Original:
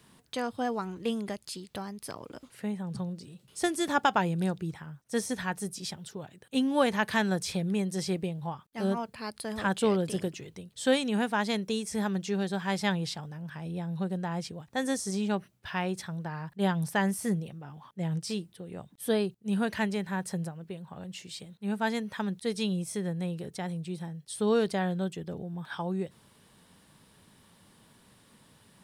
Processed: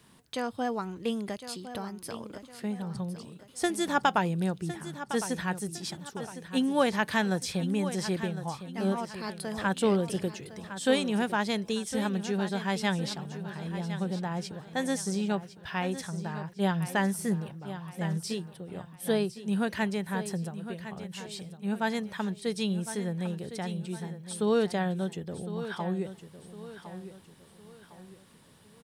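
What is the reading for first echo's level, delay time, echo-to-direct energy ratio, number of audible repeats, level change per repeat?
−12.0 dB, 1,058 ms, −11.5 dB, 3, −8.0 dB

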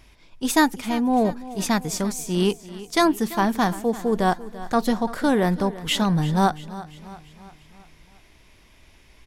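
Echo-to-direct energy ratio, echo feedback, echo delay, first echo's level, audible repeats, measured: −15.0 dB, 52%, 340 ms, −16.5 dB, 4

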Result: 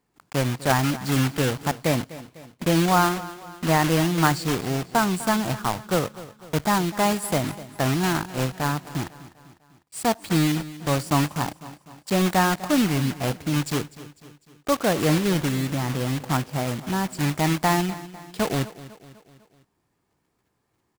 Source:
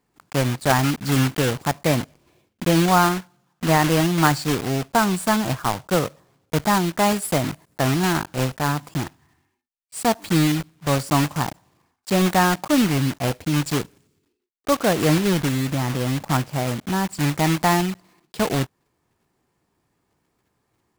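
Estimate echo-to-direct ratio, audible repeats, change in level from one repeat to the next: −15.5 dB, 4, −6.0 dB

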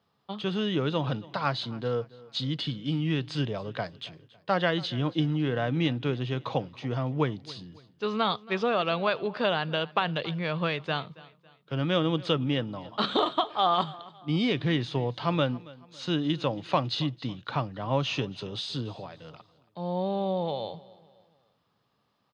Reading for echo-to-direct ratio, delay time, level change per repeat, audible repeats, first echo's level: −20.5 dB, 277 ms, −8.0 dB, 2, −21.0 dB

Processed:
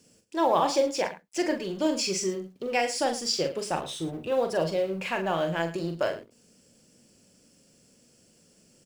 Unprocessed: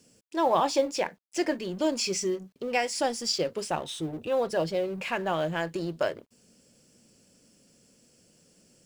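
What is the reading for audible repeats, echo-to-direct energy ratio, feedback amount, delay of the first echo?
2, −6.5 dB, repeats not evenly spaced, 42 ms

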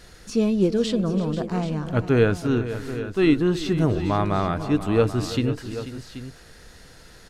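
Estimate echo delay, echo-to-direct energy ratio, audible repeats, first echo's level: 335 ms, −9.0 dB, 3, −16.0 dB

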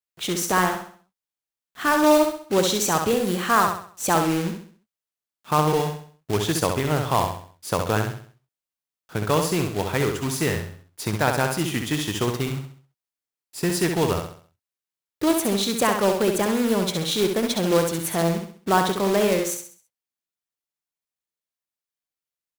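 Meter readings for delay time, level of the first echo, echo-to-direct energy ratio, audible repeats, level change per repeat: 66 ms, −5.5 dB, −5.0 dB, 4, −8.0 dB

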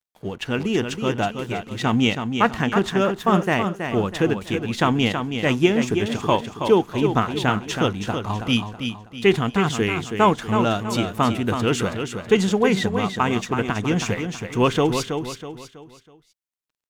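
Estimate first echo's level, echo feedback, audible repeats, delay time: −7.0 dB, 38%, 4, 324 ms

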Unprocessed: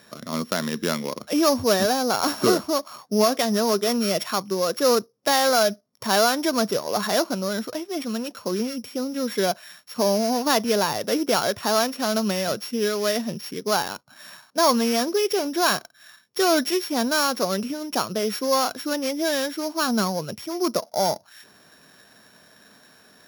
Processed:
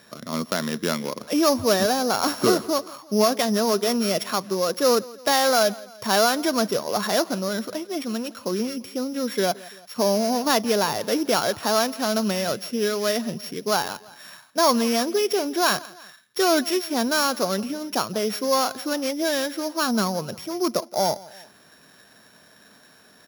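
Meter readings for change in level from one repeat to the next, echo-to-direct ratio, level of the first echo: −5.5 dB, −20.0 dB, −21.0 dB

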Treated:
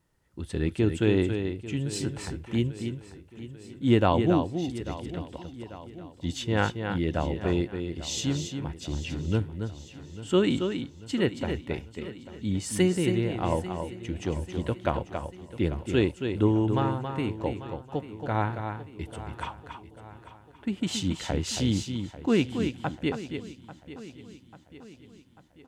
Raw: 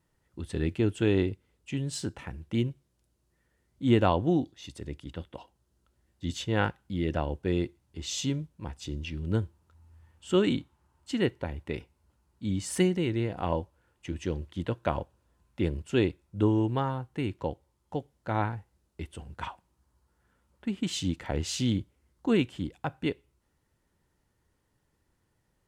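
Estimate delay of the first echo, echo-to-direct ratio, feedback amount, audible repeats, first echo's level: 276 ms, −6.0 dB, repeats not evenly spaced, 8, −7.0 dB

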